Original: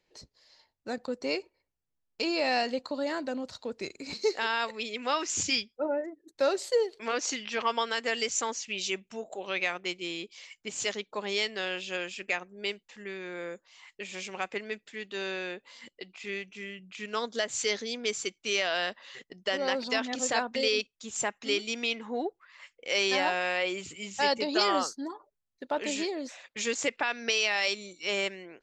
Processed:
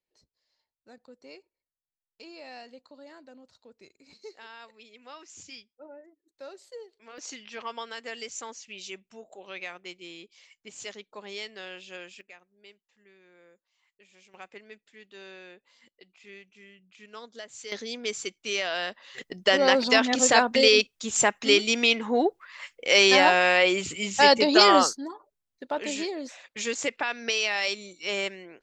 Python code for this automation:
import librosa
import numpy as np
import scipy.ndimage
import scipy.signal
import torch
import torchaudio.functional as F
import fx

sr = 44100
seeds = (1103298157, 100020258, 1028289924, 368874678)

y = fx.gain(x, sr, db=fx.steps((0.0, -17.0), (7.18, -8.0), (12.21, -19.5), (14.34, -11.5), (17.72, -0.5), (19.18, 9.0), (24.97, 0.5)))